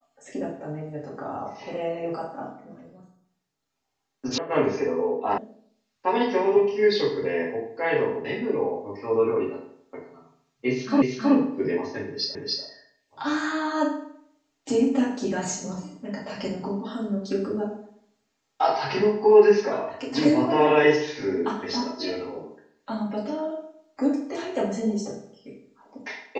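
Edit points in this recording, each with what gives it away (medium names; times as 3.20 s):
4.38 s: sound stops dead
5.38 s: sound stops dead
11.02 s: repeat of the last 0.32 s
12.35 s: repeat of the last 0.29 s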